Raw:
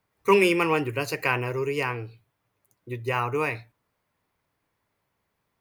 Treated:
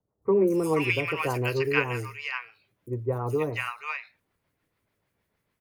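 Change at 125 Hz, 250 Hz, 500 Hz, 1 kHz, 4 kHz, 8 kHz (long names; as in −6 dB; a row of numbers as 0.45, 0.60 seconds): +1.5, 0.0, −0.5, −5.0, −2.5, −3.5 decibels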